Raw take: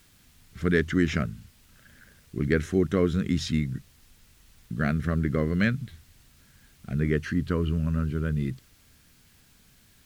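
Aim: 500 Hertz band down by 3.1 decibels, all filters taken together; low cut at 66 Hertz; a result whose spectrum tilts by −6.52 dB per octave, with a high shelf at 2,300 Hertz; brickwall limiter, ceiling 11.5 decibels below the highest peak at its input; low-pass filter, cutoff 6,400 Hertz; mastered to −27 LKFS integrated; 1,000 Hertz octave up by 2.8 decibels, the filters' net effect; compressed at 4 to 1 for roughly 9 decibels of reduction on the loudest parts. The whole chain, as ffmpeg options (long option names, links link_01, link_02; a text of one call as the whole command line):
ffmpeg -i in.wav -af "highpass=66,lowpass=6400,equalizer=frequency=500:width_type=o:gain=-5,equalizer=frequency=1000:width_type=o:gain=7,highshelf=frequency=2300:gain=-7,acompressor=threshold=-30dB:ratio=4,volume=13.5dB,alimiter=limit=-16.5dB:level=0:latency=1" out.wav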